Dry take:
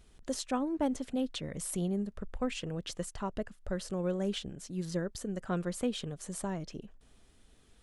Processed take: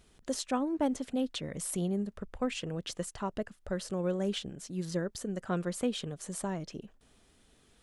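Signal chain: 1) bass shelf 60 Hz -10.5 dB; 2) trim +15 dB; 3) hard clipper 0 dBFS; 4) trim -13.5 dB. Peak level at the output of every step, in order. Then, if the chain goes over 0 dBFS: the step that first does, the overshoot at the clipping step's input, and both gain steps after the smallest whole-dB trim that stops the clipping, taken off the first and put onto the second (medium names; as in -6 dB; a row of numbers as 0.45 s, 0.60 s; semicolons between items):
-20.5 dBFS, -5.5 dBFS, -5.5 dBFS, -19.0 dBFS; nothing clips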